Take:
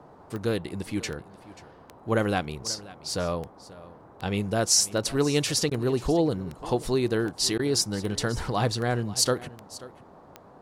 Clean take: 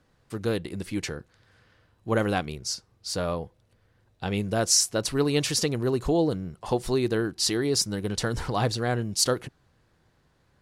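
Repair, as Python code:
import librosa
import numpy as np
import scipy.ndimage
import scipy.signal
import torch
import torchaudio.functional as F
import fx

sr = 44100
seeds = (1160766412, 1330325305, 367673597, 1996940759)

y = fx.fix_declick_ar(x, sr, threshold=10.0)
y = fx.fix_interpolate(y, sr, at_s=(5.7, 7.58), length_ms=11.0)
y = fx.noise_reduce(y, sr, print_start_s=10.04, print_end_s=10.54, reduce_db=15.0)
y = fx.fix_echo_inverse(y, sr, delay_ms=536, level_db=-18.5)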